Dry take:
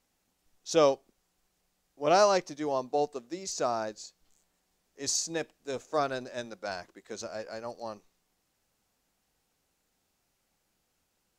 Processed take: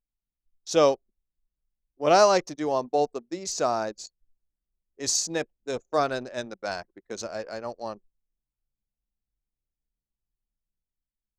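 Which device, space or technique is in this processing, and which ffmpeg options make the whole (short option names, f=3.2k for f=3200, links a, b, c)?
voice memo with heavy noise removal: -af "anlmdn=0.0251,dynaudnorm=f=170:g=9:m=3.5dB,volume=1dB"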